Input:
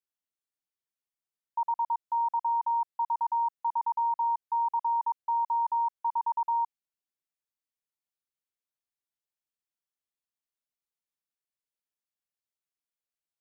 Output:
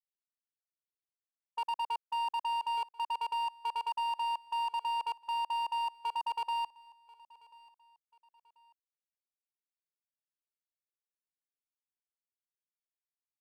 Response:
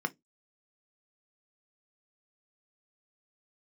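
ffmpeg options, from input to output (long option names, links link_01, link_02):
-filter_complex "[0:a]afwtdn=0.0126,lowpass=1000,agate=range=-14dB:threshold=-36dB:ratio=16:detection=peak,asoftclip=type=hard:threshold=-33dB,asplit=2[link_01][link_02];[link_02]aecho=0:1:1038|2076:0.0708|0.0255[link_03];[link_01][link_03]amix=inputs=2:normalize=0,volume=2dB"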